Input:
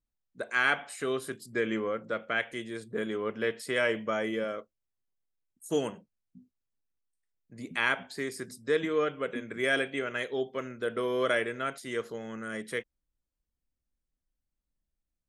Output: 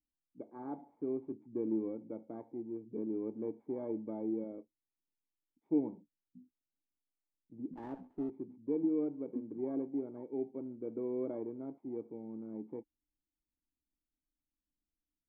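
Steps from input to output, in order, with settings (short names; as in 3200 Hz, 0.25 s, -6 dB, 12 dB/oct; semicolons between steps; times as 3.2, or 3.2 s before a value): FFT order left unsorted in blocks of 16 samples; vocal tract filter u; 7.73–8.3 running maximum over 9 samples; gain +4.5 dB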